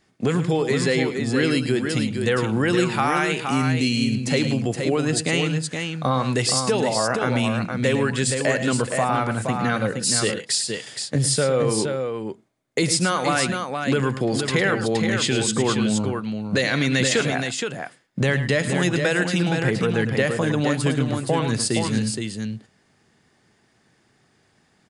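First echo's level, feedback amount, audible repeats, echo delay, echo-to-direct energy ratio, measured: -12.0 dB, no steady repeat, 2, 0.107 s, -4.5 dB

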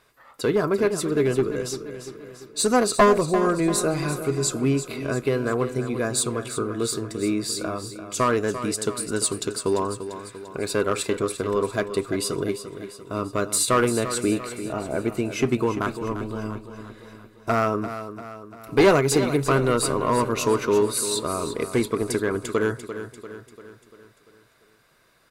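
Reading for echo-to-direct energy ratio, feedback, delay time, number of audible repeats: -9.5 dB, 52%, 0.344 s, 5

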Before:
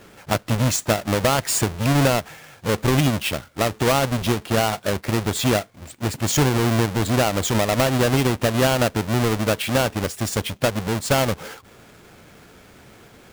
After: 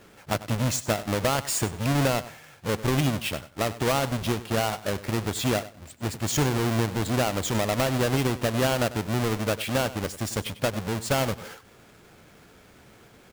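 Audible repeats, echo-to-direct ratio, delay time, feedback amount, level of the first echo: 2, -16.0 dB, 97 ms, 19%, -16.0 dB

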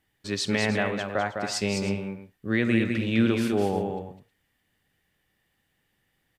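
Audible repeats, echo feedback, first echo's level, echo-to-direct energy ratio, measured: 2, no steady repeat, -5.5 dB, -5.0 dB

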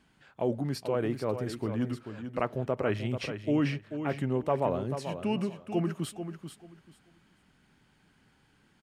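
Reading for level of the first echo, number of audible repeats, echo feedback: -9.0 dB, 2, 20%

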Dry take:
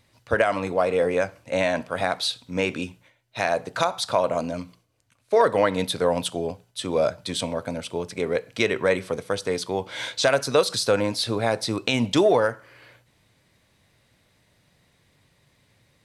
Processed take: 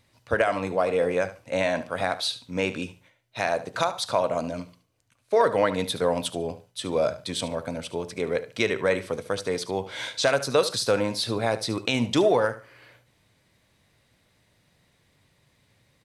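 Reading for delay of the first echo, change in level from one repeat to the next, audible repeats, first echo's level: 73 ms, -14.5 dB, 2, -14.5 dB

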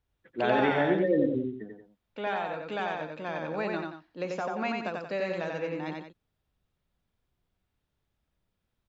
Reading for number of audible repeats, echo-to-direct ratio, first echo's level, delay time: 2, -2.5 dB, -3.0 dB, 90 ms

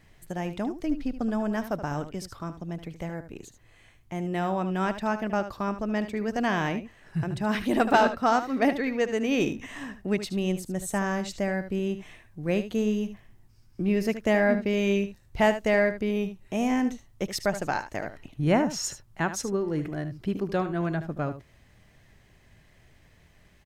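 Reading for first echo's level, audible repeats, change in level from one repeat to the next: -11.5 dB, 1, no steady repeat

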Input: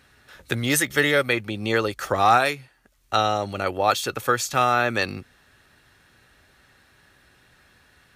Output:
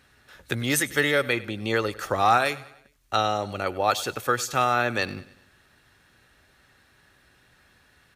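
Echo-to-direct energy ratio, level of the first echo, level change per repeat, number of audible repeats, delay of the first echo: -18.0 dB, -19.0 dB, -6.5 dB, 3, 99 ms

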